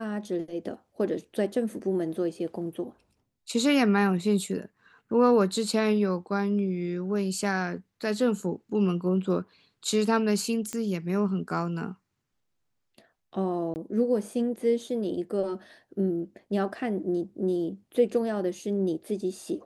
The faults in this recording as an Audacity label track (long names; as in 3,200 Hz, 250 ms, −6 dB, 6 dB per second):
10.730000	10.730000	click −18 dBFS
13.740000	13.760000	drop-out 19 ms